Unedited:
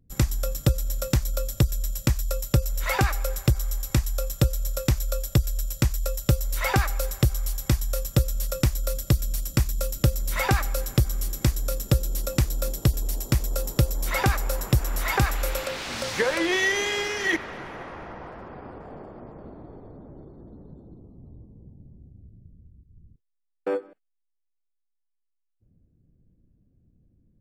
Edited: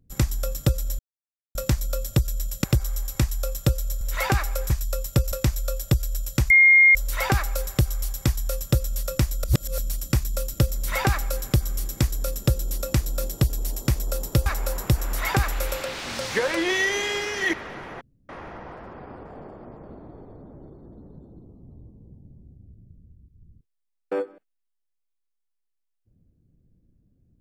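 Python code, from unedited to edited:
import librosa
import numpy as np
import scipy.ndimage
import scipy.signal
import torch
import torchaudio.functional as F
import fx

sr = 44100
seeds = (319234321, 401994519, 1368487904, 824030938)

y = fx.edit(x, sr, fx.insert_silence(at_s=0.99, length_s=0.56),
    fx.swap(start_s=2.08, length_s=0.62, other_s=3.39, other_length_s=1.37),
    fx.bleep(start_s=5.94, length_s=0.45, hz=2130.0, db=-10.5),
    fx.reverse_span(start_s=8.88, length_s=0.34),
    fx.cut(start_s=13.9, length_s=0.39),
    fx.insert_room_tone(at_s=17.84, length_s=0.28), tone=tone)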